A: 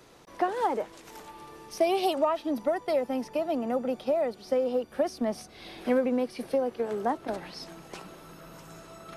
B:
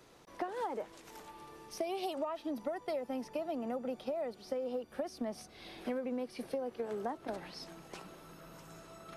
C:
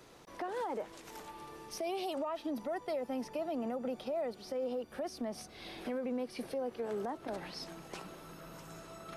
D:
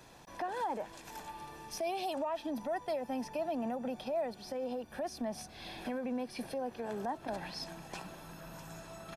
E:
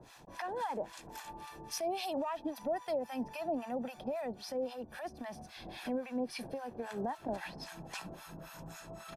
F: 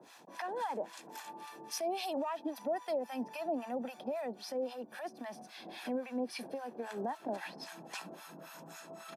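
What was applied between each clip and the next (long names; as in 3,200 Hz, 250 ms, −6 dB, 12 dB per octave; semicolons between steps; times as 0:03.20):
downward compressor 6 to 1, threshold −28 dBFS, peak gain reduction 8.5 dB; level −5.5 dB
brickwall limiter −32.5 dBFS, peak gain reduction 7.5 dB; level +3 dB
comb filter 1.2 ms, depth 45%; level +1 dB
two-band tremolo in antiphase 3.7 Hz, depth 100%, crossover 850 Hz; level +4.5 dB
high-pass filter 200 Hz 24 dB per octave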